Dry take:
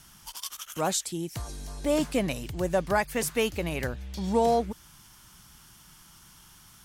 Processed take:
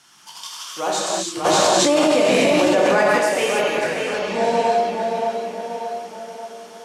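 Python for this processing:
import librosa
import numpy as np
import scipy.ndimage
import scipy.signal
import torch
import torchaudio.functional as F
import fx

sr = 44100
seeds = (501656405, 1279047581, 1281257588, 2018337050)

y = fx.bandpass_edges(x, sr, low_hz=360.0, high_hz=7100.0)
y = fx.echo_tape(y, sr, ms=582, feedback_pct=55, wet_db=-3.5, lp_hz=4100.0, drive_db=8.0, wow_cents=31)
y = fx.rev_gated(y, sr, seeds[0], gate_ms=350, shape='flat', drr_db=-5.0)
y = fx.env_flatten(y, sr, amount_pct=100, at=(1.44, 3.17), fade=0.02)
y = y * librosa.db_to_amplitude(2.5)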